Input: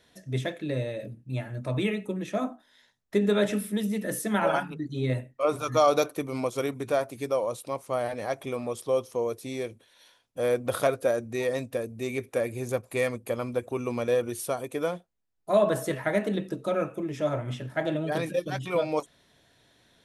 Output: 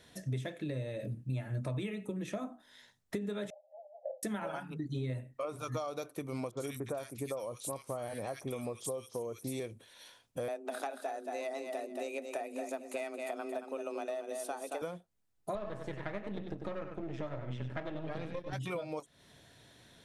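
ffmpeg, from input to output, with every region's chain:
ffmpeg -i in.wav -filter_complex "[0:a]asettb=1/sr,asplit=3[link_01][link_02][link_03];[link_01]atrim=end=3.504[link_04];[link_02]atrim=start=3.5:end=4.23,asetpts=PTS-STARTPTS,afade=type=in:duration=0.004:curve=qsin,afade=type=out:start_time=0.726:duration=0.004:curve=qsin,asuperpass=centerf=660:order=20:qfactor=2.2,acompressor=mode=upward:threshold=-56dB:ratio=2.5:attack=3.2:release=140:knee=2.83:detection=peak[link_05];[link_03]atrim=start=4.226[link_06];[link_04][link_05]acrossfade=duration=0.004:curve1=hsin:curve2=qsin[link_07];[link_07][link_06]acrossfade=duration=0.004:curve1=qsin:curve2=hsin,asettb=1/sr,asplit=3[link_08][link_09][link_10];[link_08]atrim=end=6.514[link_11];[link_09]atrim=start=6.51:end=9.6,asetpts=PTS-STARTPTS,afade=type=in:duration=0.004:curve=qsin,afade=type=out:start_time=3.086:duration=0.004:curve=qsin,equalizer=frequency=11000:width_type=o:width=2:gain=6.5,acrossover=split=1600|5800[link_12][link_13][link_14];[link_13]adelay=60[link_15];[link_14]adelay=90[link_16];[link_12][link_15][link_16]amix=inputs=3:normalize=0,atrim=end_sample=136269[link_17];[link_10]atrim=start=9.596[link_18];[link_11][link_17]acrossfade=duration=0.004:curve1=hsin:curve2=qsin[link_19];[link_19][link_18]acrossfade=duration=0.004:curve1=qsin:curve2=hsin,asettb=1/sr,asplit=3[link_20][link_21][link_22];[link_20]atrim=end=10.484[link_23];[link_21]atrim=start=10.48:end=14.82,asetpts=PTS-STARTPTS,afade=type=in:duration=0.004:curve=qsin,afade=type=out:start_time=4.336:duration=0.004:curve=qsin,lowpass=9400,afreqshift=140,aecho=1:1:225|450|675:0.398|0.0717|0.0129,atrim=end_sample=191394[link_24];[link_22]atrim=start=14.816[link_25];[link_23][link_24]acrossfade=duration=0.004:curve1=hsin:curve2=qsin[link_26];[link_26][link_25]acrossfade=duration=0.004:curve1=qsin:curve2=hsin,asettb=1/sr,asplit=3[link_27][link_28][link_29];[link_27]atrim=end=15.554[link_30];[link_28]atrim=start=15.55:end=18.53,asetpts=PTS-STARTPTS,afade=type=in:duration=0.004:curve=qsin,afade=type=out:start_time=2.976:duration=0.004:curve=qsin,aeval=exprs='if(lt(val(0),0),0.251*val(0),val(0))':channel_layout=same,lowpass=3800,aecho=1:1:96:0.376,atrim=end_sample=131418[link_31];[link_29]atrim=start=18.526[link_32];[link_30][link_31]acrossfade=duration=0.004:curve1=hsin:curve2=qsin[link_33];[link_33][link_32]acrossfade=duration=0.004:curve1=qsin:curve2=hsin,equalizer=frequency=8600:width=1.7:gain=3,acompressor=threshold=-38dB:ratio=10,equalizer=frequency=120:width=0.91:gain=4,volume=2dB" out.wav

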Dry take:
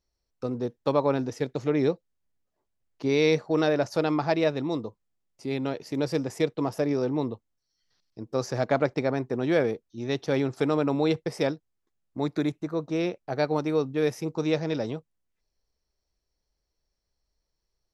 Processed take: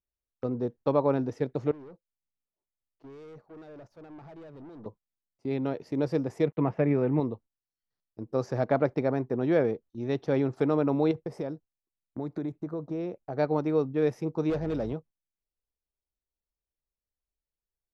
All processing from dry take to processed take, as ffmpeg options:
ffmpeg -i in.wav -filter_complex "[0:a]asettb=1/sr,asplit=3[link_01][link_02][link_03];[link_01]atrim=end=1.714[link_04];[link_02]atrim=start=1.71:end=4.86,asetpts=PTS-STARTPTS,afade=type=in:duration=0.004:curve=qsin,afade=type=out:start_time=3.146:duration=0.004:curve=qsin,acompressor=threshold=-34dB:ratio=12:attack=3.2:release=140:knee=1:detection=peak,aeval=exprs='(tanh(141*val(0)+0.25)-tanh(0.25))/141':channel_layout=same[link_05];[link_03]atrim=start=4.856[link_06];[link_04][link_05]acrossfade=duration=0.004:curve1=hsin:curve2=qsin[link_07];[link_07][link_06]acrossfade=duration=0.004:curve1=qsin:curve2=hsin,asettb=1/sr,asplit=3[link_08][link_09][link_10];[link_08]atrim=end=6.464[link_11];[link_09]atrim=start=6.46:end=7.2,asetpts=PTS-STARTPTS,afade=type=in:duration=0.004:curve=qsin,afade=type=out:start_time=0.736:duration=0.004:curve=qsin,equalizer=frequency=160:width_type=o:width=0.69:gain=7.5,aeval=exprs='sgn(val(0))*max(abs(val(0))-0.00119,0)':channel_layout=same,lowpass=frequency=2300:width_type=q:width=2.6[link_12];[link_10]atrim=start=7.196[link_13];[link_11][link_12]acrossfade=duration=0.004:curve1=hsin:curve2=qsin[link_14];[link_14][link_13]acrossfade=duration=0.004:curve1=qsin:curve2=hsin,asettb=1/sr,asplit=3[link_15][link_16][link_17];[link_15]atrim=end=11.114[link_18];[link_16]atrim=start=11.11:end=13.37,asetpts=PTS-STARTPTS,afade=type=in:duration=0.004:curve=qsin,afade=type=out:start_time=2.256:duration=0.004:curve=qsin,acompressor=threshold=-28dB:ratio=4:attack=3.2:release=140:knee=1:detection=peak,equalizer=frequency=2700:width=0.6:gain=-5.5[link_19];[link_17]atrim=start=13.366[link_20];[link_18][link_19]acrossfade=duration=0.004:curve1=hsin:curve2=qsin[link_21];[link_21][link_20]acrossfade=duration=0.004:curve1=qsin:curve2=hsin,asettb=1/sr,asplit=3[link_22][link_23][link_24];[link_22]atrim=end=14.504[link_25];[link_23]atrim=start=14.5:end=14.93,asetpts=PTS-STARTPTS,afade=type=in:duration=0.004:curve=qsin,afade=type=out:start_time=0.426:duration=0.004:curve=qsin,highpass=58,aeval=exprs='val(0)+0.00794*(sin(2*PI*50*n/s)+sin(2*PI*2*50*n/s)/2+sin(2*PI*3*50*n/s)/3+sin(2*PI*4*50*n/s)/4+sin(2*PI*5*50*n/s)/5)':channel_layout=same,asoftclip=type=hard:threshold=-24dB[link_26];[link_24]atrim=start=14.926[link_27];[link_25][link_26]acrossfade=duration=0.004:curve1=hsin:curve2=qsin[link_28];[link_28][link_27]acrossfade=duration=0.004:curve1=qsin:curve2=hsin,highshelf=frequency=2000:gain=-10.5,agate=range=-14dB:threshold=-48dB:ratio=16:detection=peak,highshelf=frequency=5000:gain=-6" out.wav

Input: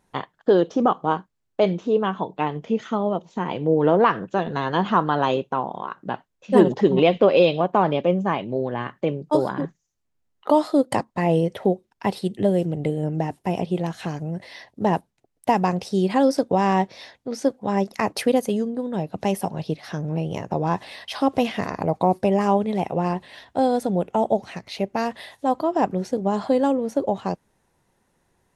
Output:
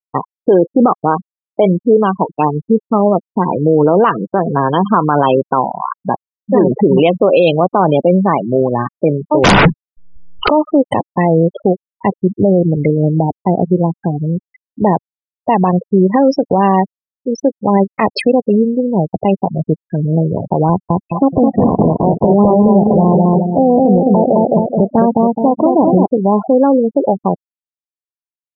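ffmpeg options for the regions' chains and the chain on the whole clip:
ffmpeg -i in.wav -filter_complex "[0:a]asettb=1/sr,asplit=3[link_01][link_02][link_03];[link_01]atrim=end=9.444[link_04];[link_02]atrim=start=9.44:end=10.49,asetpts=PTS-STARTPTS,afade=type=in:duration=0.004:curve=qsin,afade=type=out:start_time=1.046:duration=0.004:curve=qsin,lowpass=4600,asubboost=boost=5.5:cutoff=180,aeval=exprs='0.251*sin(PI/2*10*val(0)/0.251)':channel_layout=same[link_05];[link_03]atrim=start=10.486[link_06];[link_04][link_05]acrossfade=duration=0.004:curve1=hsin:curve2=qsin[link_07];[link_07][link_06]acrossfade=duration=0.004:curve1=qsin:curve2=hsin,asettb=1/sr,asplit=3[link_08][link_09][link_10];[link_08]atrim=end=20.694[link_11];[link_09]atrim=start=20.69:end=26.06,asetpts=PTS-STARTPTS,afade=type=in:duration=0.004:curve=qsin,afade=type=out:start_time=5.366:duration=0.004:curve=qsin,tiltshelf=frequency=1100:gain=8,acompressor=threshold=-15dB:ratio=8:attack=3.2:release=140:knee=1:detection=peak,asplit=2[link_12][link_13];[link_13]adelay=212,lowpass=frequency=4100:poles=1,volume=-3dB,asplit=2[link_14][link_15];[link_15]adelay=212,lowpass=frequency=4100:poles=1,volume=0.51,asplit=2[link_16][link_17];[link_17]adelay=212,lowpass=frequency=4100:poles=1,volume=0.51,asplit=2[link_18][link_19];[link_19]adelay=212,lowpass=frequency=4100:poles=1,volume=0.51,asplit=2[link_20][link_21];[link_21]adelay=212,lowpass=frequency=4100:poles=1,volume=0.51,asplit=2[link_22][link_23];[link_23]adelay=212,lowpass=frequency=4100:poles=1,volume=0.51,asplit=2[link_24][link_25];[link_25]adelay=212,lowpass=frequency=4100:poles=1,volume=0.51[link_26];[link_12][link_14][link_16][link_18][link_20][link_22][link_24][link_26]amix=inputs=8:normalize=0,atrim=end_sample=236817[link_27];[link_10]atrim=start=26.056[link_28];[link_11][link_27]acrossfade=duration=0.004:curve1=hsin:curve2=qsin[link_29];[link_29][link_28]acrossfade=duration=0.004:curve1=qsin:curve2=hsin,afftfilt=real='re*gte(hypot(re,im),0.0891)':imag='im*gte(hypot(re,im),0.0891)':win_size=1024:overlap=0.75,bandreject=frequency=1700:width=11,alimiter=level_in=13.5dB:limit=-1dB:release=50:level=0:latency=1,volume=-1dB" out.wav

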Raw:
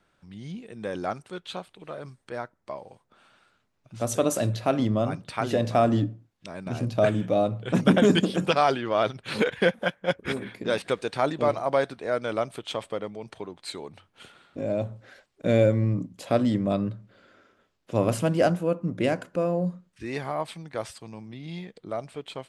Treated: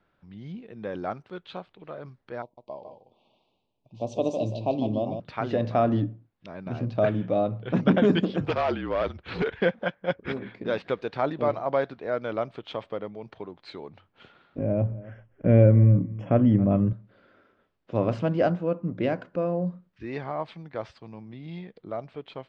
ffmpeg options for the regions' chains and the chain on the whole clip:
ffmpeg -i in.wav -filter_complex "[0:a]asettb=1/sr,asplit=3[link_01][link_02][link_03];[link_01]atrim=end=2.424[link_04];[link_02]atrim=start=2.42:end=5.2,asetpts=PTS-STARTPTS,afade=type=in:duration=0.004:curve=qsin,afade=type=out:start_time=2.776:duration=0.004:curve=qsin,asuperstop=centerf=1600:order=8:qfactor=1,lowshelf=frequency=180:gain=-6,aecho=1:1:152:0.422,atrim=end_sample=122598[link_05];[link_03]atrim=start=5.196[link_06];[link_04][link_05]acrossfade=duration=0.004:curve1=hsin:curve2=qsin[link_07];[link_07][link_06]acrossfade=duration=0.004:curve1=qsin:curve2=hsin,asettb=1/sr,asplit=3[link_08][link_09][link_10];[link_08]atrim=end=8.404[link_11];[link_09]atrim=start=8.4:end=9.6,asetpts=PTS-STARTPTS,afade=type=in:duration=0.004:curve=qsin,afade=type=out:start_time=1.196:duration=0.004:curve=qsin,afreqshift=-41,volume=19dB,asoftclip=hard,volume=-19dB[link_12];[link_10]atrim=start=9.596[link_13];[link_11][link_12]acrossfade=duration=0.004:curve1=hsin:curve2=qsin[link_14];[link_14][link_13]acrossfade=duration=0.004:curve1=qsin:curve2=hsin,asettb=1/sr,asplit=3[link_15][link_16][link_17];[link_15]atrim=end=14.584[link_18];[link_16]atrim=start=14.58:end=16.93,asetpts=PTS-STARTPTS,afade=type=in:duration=0.004:curve=qsin,afade=type=out:start_time=2.346:duration=0.004:curve=qsin,asuperstop=centerf=4200:order=20:qfactor=2.3,aemphasis=mode=reproduction:type=bsi,aecho=1:1:274:0.112,atrim=end_sample=103635[link_19];[link_17]atrim=start=16.926[link_20];[link_18][link_19]acrossfade=duration=0.004:curve1=hsin:curve2=qsin[link_21];[link_21][link_20]acrossfade=duration=0.004:curve1=qsin:curve2=hsin,lowpass=frequency=5400:width=0.5412,lowpass=frequency=5400:width=1.3066,aemphasis=mode=reproduction:type=75fm,volume=-2dB" out.wav

